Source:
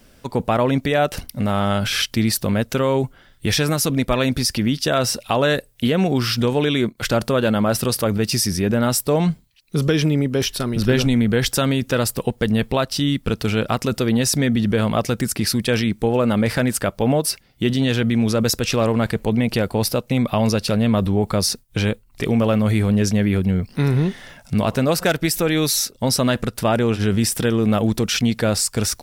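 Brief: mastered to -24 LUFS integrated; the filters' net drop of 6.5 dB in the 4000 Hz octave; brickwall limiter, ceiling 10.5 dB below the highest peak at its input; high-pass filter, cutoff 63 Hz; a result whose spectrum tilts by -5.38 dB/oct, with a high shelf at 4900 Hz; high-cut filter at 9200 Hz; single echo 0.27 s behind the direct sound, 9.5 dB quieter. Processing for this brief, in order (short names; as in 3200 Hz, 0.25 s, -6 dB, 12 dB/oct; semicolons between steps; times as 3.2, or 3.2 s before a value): HPF 63 Hz; LPF 9200 Hz; bell 4000 Hz -6.5 dB; high shelf 4900 Hz -4 dB; limiter -16.5 dBFS; echo 0.27 s -9.5 dB; gain +1.5 dB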